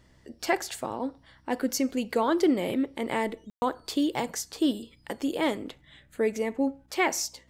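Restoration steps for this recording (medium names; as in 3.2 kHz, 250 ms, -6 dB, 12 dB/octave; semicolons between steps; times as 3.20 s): de-hum 63.6 Hz, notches 5; room tone fill 3.50–3.62 s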